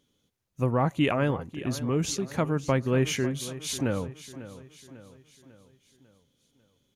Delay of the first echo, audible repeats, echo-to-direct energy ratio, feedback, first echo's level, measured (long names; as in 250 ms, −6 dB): 547 ms, 4, −14.0 dB, 49%, −15.0 dB